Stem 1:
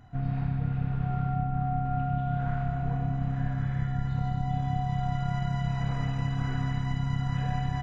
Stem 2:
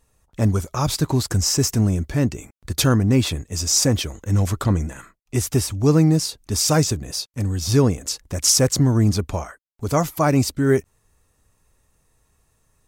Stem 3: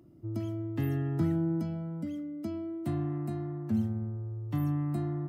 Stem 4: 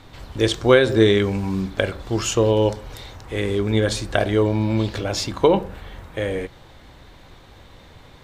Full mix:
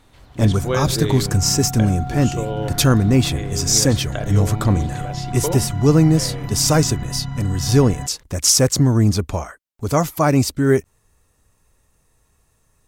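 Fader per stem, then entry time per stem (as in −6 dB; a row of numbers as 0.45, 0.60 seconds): +1.5, +2.0, −6.0, −9.0 decibels; 0.25, 0.00, 1.85, 0.00 seconds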